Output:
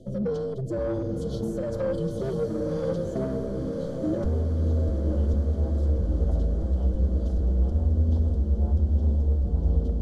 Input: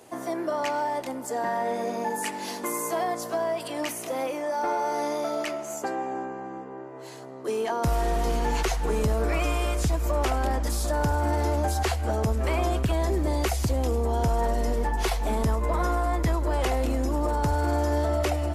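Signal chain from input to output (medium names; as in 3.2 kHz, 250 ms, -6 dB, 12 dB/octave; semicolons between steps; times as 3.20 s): RIAA curve playback; frequency shift -130 Hz; compression 4:1, threshold -21 dBFS, peak gain reduction 13 dB; brick-wall FIR band-stop 710–3000 Hz; saturation -25.5 dBFS, distortion -11 dB; rotary cabinet horn 1.1 Hz; time stretch by phase-locked vocoder 0.54×; treble shelf 10 kHz -7 dB; echo that smears into a reverb 963 ms, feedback 73%, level -6 dB; reverberation RT60 0.50 s, pre-delay 3 ms, DRR 18.5 dB; trim +4 dB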